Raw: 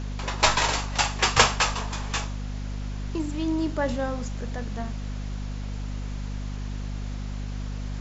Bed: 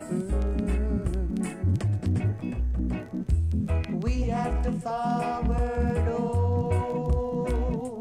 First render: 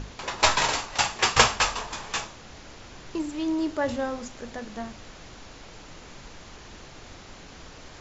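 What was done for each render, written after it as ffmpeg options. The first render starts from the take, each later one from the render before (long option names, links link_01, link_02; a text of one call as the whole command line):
ffmpeg -i in.wav -af "bandreject=frequency=50:width_type=h:width=6,bandreject=frequency=100:width_type=h:width=6,bandreject=frequency=150:width_type=h:width=6,bandreject=frequency=200:width_type=h:width=6,bandreject=frequency=250:width_type=h:width=6" out.wav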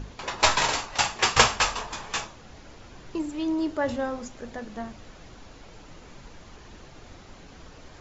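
ffmpeg -i in.wav -af "afftdn=noise_reduction=6:noise_floor=-46" out.wav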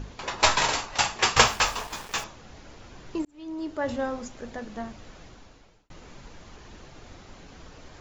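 ffmpeg -i in.wav -filter_complex "[0:a]asettb=1/sr,asplit=3[link_01][link_02][link_03];[link_01]atrim=end=1.374[link_04];[link_02]atrim=start=1.37:end=2.24,asetpts=PTS-STARTPTS,afade=type=in:duration=0.004:curve=qsin,afade=type=out:start_time=0.866:duration=0.004:curve=qsin,aeval=exprs='val(0)*gte(abs(val(0)),0.0126)':channel_layout=same[link_05];[link_03]atrim=start=2.236[link_06];[link_04][link_05]acrossfade=duration=0.004:curve1=hsin:curve2=qsin[link_07];[link_07][link_06]acrossfade=duration=0.004:curve1=qsin:curve2=hsin,asplit=3[link_08][link_09][link_10];[link_08]atrim=end=3.25,asetpts=PTS-STARTPTS,afade=type=out:start_time=3.246:duration=0.004:curve=hsin[link_11];[link_09]atrim=start=3.25:end=5.9,asetpts=PTS-STARTPTS,afade=type=in:duration=0.76,afade=type=out:start_time=1.94:duration=0.71[link_12];[link_10]atrim=start=5.9,asetpts=PTS-STARTPTS,afade=type=in:duration=0.004:curve=hsin[link_13];[link_11][link_12][link_13]concat=n=3:v=0:a=1" out.wav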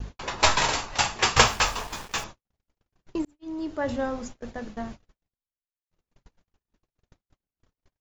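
ffmpeg -i in.wav -af "agate=range=-57dB:threshold=-40dB:ratio=16:detection=peak,lowshelf=frequency=190:gain=4.5" out.wav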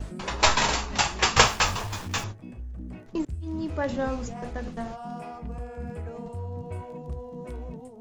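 ffmpeg -i in.wav -i bed.wav -filter_complex "[1:a]volume=-10.5dB[link_01];[0:a][link_01]amix=inputs=2:normalize=0" out.wav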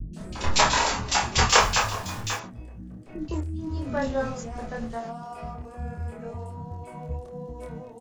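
ffmpeg -i in.wav -filter_complex "[0:a]asplit=2[link_01][link_02];[link_02]adelay=26,volume=-2.5dB[link_03];[link_01][link_03]amix=inputs=2:normalize=0,acrossover=split=300|2700[link_04][link_05][link_06];[link_06]adelay=130[link_07];[link_05]adelay=160[link_08];[link_04][link_08][link_07]amix=inputs=3:normalize=0" out.wav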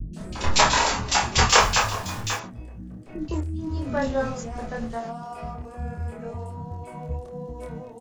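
ffmpeg -i in.wav -af "volume=2dB,alimiter=limit=-2dB:level=0:latency=1" out.wav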